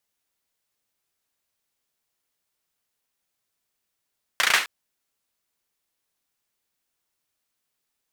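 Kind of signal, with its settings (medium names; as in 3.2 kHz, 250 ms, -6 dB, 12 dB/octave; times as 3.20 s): hand clap length 0.26 s, bursts 5, apart 34 ms, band 1.8 kHz, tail 0.35 s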